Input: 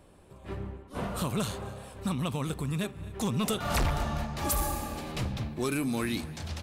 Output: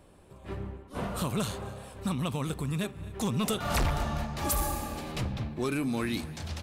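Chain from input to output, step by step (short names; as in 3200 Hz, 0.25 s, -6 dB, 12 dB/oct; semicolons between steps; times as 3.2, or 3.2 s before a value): 5.2–6.12 high shelf 5000 Hz -> 7800 Hz -8.5 dB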